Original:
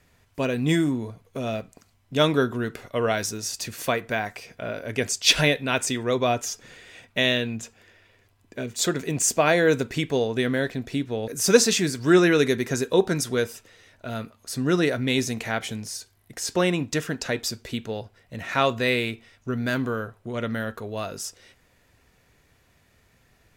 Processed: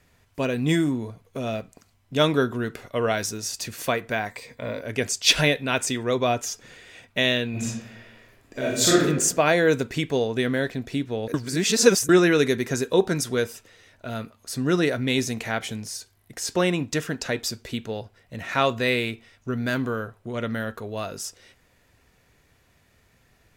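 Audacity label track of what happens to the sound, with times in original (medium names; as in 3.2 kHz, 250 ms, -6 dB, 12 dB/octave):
4.310000	4.810000	rippled EQ curve crests per octave 1, crest to trough 10 dB
7.500000	9.010000	reverb throw, RT60 0.88 s, DRR -7 dB
11.340000	12.090000	reverse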